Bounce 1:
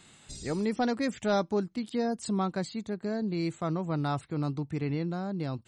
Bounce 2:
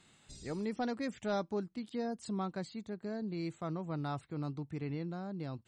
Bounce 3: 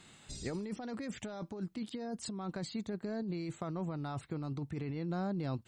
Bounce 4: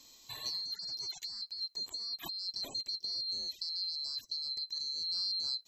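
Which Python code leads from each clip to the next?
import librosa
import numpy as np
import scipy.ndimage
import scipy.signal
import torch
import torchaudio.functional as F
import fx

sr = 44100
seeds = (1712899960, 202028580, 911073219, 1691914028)

y1 = fx.high_shelf(x, sr, hz=8900.0, db=-7.0)
y1 = F.gain(torch.from_numpy(y1), -7.5).numpy()
y2 = fx.over_compress(y1, sr, threshold_db=-41.0, ratio=-1.0)
y2 = F.gain(torch.from_numpy(y2), 3.0).numpy()
y3 = fx.band_swap(y2, sr, width_hz=4000)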